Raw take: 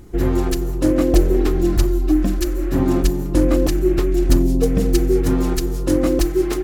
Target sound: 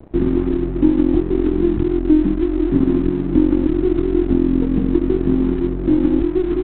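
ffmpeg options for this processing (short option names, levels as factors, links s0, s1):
-filter_complex "[0:a]aeval=exprs='0.668*(cos(1*acos(clip(val(0)/0.668,-1,1)))-cos(1*PI/2))+0.188*(cos(4*acos(clip(val(0)/0.668,-1,1)))-cos(4*PI/2))+0.0422*(cos(6*acos(clip(val(0)/0.668,-1,1)))-cos(6*PI/2))':c=same,acrossover=split=120|510|1400[s0][s1][s2][s3];[s0]acompressor=threshold=0.0355:ratio=4[s4];[s1]acompressor=threshold=0.0562:ratio=4[s5];[s2]acompressor=threshold=0.0398:ratio=4[s6];[s3]acompressor=threshold=0.00794:ratio=4[s7];[s4][s5][s6][s7]amix=inputs=4:normalize=0,lowshelf=f=420:t=q:w=3:g=10.5,aresample=8000,aeval=exprs='sgn(val(0))*max(abs(val(0))-0.0335,0)':c=same,aresample=44100,volume=0.562"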